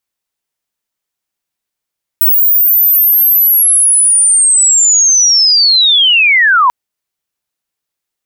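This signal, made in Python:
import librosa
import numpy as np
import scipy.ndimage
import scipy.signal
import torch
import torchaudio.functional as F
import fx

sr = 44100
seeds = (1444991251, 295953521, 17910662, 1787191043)

y = fx.chirp(sr, length_s=4.49, from_hz=16000.0, to_hz=940.0, law='linear', from_db=-5.5, to_db=-5.0)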